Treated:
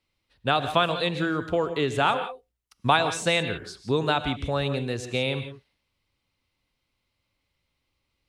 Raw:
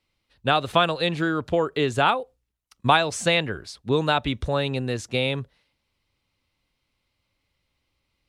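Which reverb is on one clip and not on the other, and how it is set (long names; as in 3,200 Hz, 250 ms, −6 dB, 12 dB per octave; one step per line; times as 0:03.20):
reverb whose tail is shaped and stops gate 190 ms rising, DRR 9.5 dB
level −2.5 dB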